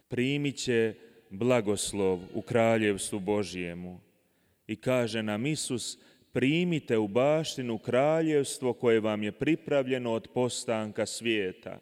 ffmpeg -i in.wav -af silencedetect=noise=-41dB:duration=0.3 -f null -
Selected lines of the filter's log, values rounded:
silence_start: 0.92
silence_end: 1.32 | silence_duration: 0.39
silence_start: 3.96
silence_end: 4.69 | silence_duration: 0.73
silence_start: 5.93
silence_end: 6.35 | silence_duration: 0.42